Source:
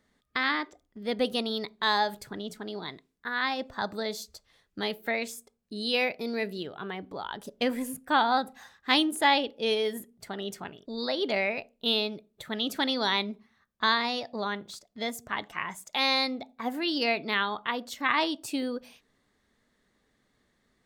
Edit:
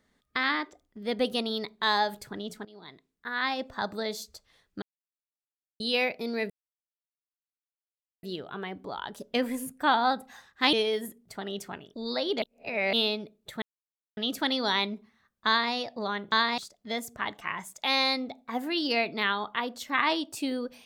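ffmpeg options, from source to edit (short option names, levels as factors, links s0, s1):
-filter_complex "[0:a]asplit=11[s0][s1][s2][s3][s4][s5][s6][s7][s8][s9][s10];[s0]atrim=end=2.65,asetpts=PTS-STARTPTS,afade=t=out:st=2.646:d=0.004:c=hsin:silence=0.112202[s11];[s1]atrim=start=2.65:end=4.82,asetpts=PTS-STARTPTS,afade=t=in:d=0.82:silence=0.112202,afade=t=out:st=2.166:d=0.004:c=hsin[s12];[s2]atrim=start=4.82:end=5.8,asetpts=PTS-STARTPTS,volume=0[s13];[s3]atrim=start=5.8:end=6.5,asetpts=PTS-STARTPTS,afade=t=in:d=0.004:c=hsin,afade=t=out:st=0.696:d=0.004:c=hsin,apad=pad_dur=1.73[s14];[s4]atrim=start=6.5:end=9.002,asetpts=PTS-STARTPTS,afade=t=in:d=0.004:c=hsin[s15];[s5]atrim=start=9.648:end=11.342[s16];[s6]atrim=start=11.338:end=11.852,asetpts=PTS-STARTPTS,areverse[s17];[s7]atrim=start=11.848:end=12.54,asetpts=PTS-STARTPTS,afade=t=out:st=0.688:d=0.004:c=hsin,apad=pad_dur=0.55[s18];[s8]atrim=start=12.54:end=14.692,asetpts=PTS-STARTPTS,afade=t=in:d=0.004:c=hsin[s19];[s9]atrim=start=13.838:end=14.102[s20];[s10]atrim=start=14.688[s21];[s11][s12][s13][s14][s15]concat=n=5:v=0:a=1[s22];[s22][s16]acrossfade=d=0.004:c1=hsin:c2=hsin[s23];[s23][s17]acrossfade=d=0.004:c1=hsin:c2=hsin[s24];[s18][s19]concat=n=2:v=0:a=1[s25];[s24][s25]acrossfade=d=0.004:c1=hsin:c2=hsin[s26];[s26][s20]acrossfade=d=0.004:c1=hsin:c2=hsin[s27];[s27][s21]acrossfade=d=0.004:c1=hsin:c2=hsin"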